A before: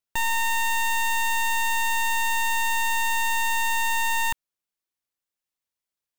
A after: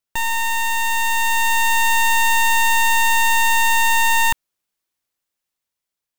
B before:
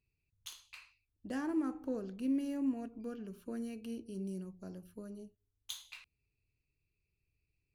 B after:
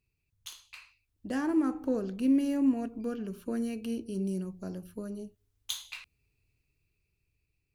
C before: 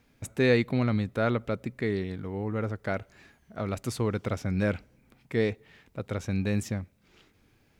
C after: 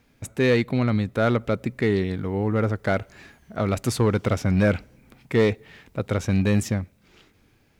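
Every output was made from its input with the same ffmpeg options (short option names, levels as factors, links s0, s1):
-filter_complex "[0:a]dynaudnorm=f=380:g=7:m=1.78,asplit=2[s0][s1];[s1]aeval=exprs='0.133*(abs(mod(val(0)/0.133+3,4)-2)-1)':c=same,volume=0.447[s2];[s0][s2]amix=inputs=2:normalize=0"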